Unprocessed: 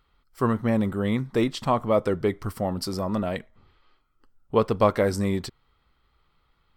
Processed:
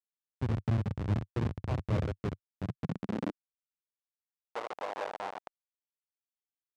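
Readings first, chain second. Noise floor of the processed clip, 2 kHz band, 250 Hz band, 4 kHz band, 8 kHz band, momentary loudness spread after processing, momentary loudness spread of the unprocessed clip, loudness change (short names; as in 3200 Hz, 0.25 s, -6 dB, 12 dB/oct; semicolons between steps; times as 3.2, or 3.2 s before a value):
under -85 dBFS, -10.0 dB, -12.0 dB, -14.0 dB, under -15 dB, 9 LU, 8 LU, -10.0 dB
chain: compressor 1.5:1, threshold -39 dBFS, peak gain reduction 9 dB; wow and flutter 60 cents; reverse bouncing-ball echo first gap 70 ms, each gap 1.1×, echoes 5; Schmitt trigger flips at -24 dBFS; high-pass sweep 98 Hz -> 750 Hz, 2.49–4.04; tape spacing loss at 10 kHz 20 dB; noise-modulated level, depth 60%; gain +4.5 dB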